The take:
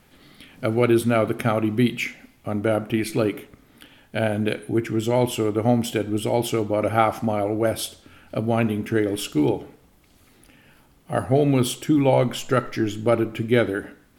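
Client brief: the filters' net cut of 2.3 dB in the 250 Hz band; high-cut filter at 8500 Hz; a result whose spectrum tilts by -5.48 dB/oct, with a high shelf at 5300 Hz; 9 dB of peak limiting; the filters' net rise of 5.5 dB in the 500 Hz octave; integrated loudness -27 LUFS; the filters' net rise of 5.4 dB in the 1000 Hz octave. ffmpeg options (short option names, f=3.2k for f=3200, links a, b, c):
-af "lowpass=8.5k,equalizer=f=250:t=o:g=-6.5,equalizer=f=500:t=o:g=7,equalizer=f=1k:t=o:g=5,highshelf=f=5.3k:g=6.5,volume=-5.5dB,alimiter=limit=-14dB:level=0:latency=1"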